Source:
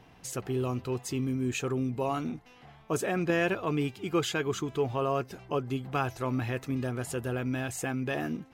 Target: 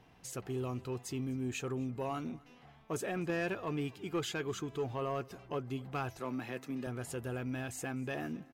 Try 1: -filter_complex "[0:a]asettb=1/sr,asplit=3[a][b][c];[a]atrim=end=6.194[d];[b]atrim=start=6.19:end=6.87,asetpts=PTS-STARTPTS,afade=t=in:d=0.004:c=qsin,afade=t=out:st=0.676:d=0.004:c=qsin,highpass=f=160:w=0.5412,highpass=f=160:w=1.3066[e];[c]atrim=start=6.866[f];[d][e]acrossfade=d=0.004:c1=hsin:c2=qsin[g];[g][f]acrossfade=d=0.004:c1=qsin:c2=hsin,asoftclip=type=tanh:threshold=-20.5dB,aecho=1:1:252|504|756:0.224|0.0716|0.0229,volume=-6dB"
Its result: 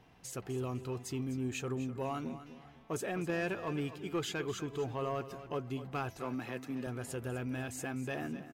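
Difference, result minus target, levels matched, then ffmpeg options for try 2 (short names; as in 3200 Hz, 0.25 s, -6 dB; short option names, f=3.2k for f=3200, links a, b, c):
echo-to-direct +11 dB
-filter_complex "[0:a]asettb=1/sr,asplit=3[a][b][c];[a]atrim=end=6.194[d];[b]atrim=start=6.19:end=6.87,asetpts=PTS-STARTPTS,afade=t=in:d=0.004:c=qsin,afade=t=out:st=0.676:d=0.004:c=qsin,highpass=f=160:w=0.5412,highpass=f=160:w=1.3066[e];[c]atrim=start=6.866[f];[d][e]acrossfade=d=0.004:c1=hsin:c2=qsin[g];[g][f]acrossfade=d=0.004:c1=qsin:c2=hsin,asoftclip=type=tanh:threshold=-20.5dB,aecho=1:1:252|504:0.0631|0.0202,volume=-6dB"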